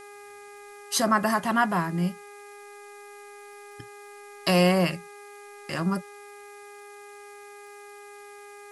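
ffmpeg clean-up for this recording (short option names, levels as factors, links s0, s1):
-af "adeclick=t=4,bandreject=f=409:t=h:w=4,bandreject=f=818:t=h:w=4,bandreject=f=1227:t=h:w=4,bandreject=f=1636:t=h:w=4,bandreject=f=2045:t=h:w=4,bandreject=f=2454:t=h:w=4,afftdn=nr=26:nf=-46"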